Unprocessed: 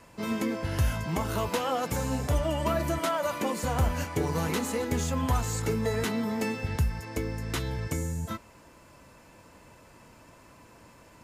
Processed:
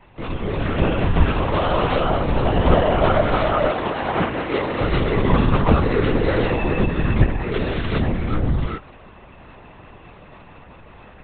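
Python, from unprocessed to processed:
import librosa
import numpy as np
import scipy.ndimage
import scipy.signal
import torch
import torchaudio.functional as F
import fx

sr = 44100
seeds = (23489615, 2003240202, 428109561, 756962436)

y = fx.rev_gated(x, sr, seeds[0], gate_ms=440, shape='rising', drr_db=-4.5)
y = fx.lpc_vocoder(y, sr, seeds[1], excitation='whisper', order=10)
y = fx.highpass(y, sr, hz=420.0, slope=6, at=(3.71, 4.81))
y = y * librosa.db_to_amplitude(4.5)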